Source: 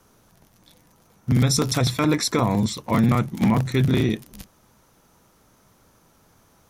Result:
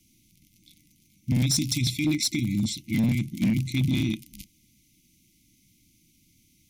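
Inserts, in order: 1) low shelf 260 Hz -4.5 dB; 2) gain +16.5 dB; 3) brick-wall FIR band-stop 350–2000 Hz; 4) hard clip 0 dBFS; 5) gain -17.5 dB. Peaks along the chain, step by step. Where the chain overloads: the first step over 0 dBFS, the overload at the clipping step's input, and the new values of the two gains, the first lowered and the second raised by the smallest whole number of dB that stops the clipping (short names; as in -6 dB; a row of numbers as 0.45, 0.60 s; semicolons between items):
-9.5, +7.0, +6.0, 0.0, -17.5 dBFS; step 2, 6.0 dB; step 2 +10.5 dB, step 5 -11.5 dB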